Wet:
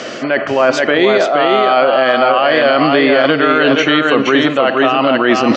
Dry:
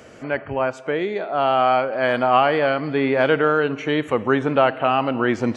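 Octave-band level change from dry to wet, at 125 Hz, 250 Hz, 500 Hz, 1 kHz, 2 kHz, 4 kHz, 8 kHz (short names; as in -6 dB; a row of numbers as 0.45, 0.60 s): +2.0 dB, +9.5 dB, +8.0 dB, +6.0 dB, +10.0 dB, +14.5 dB, n/a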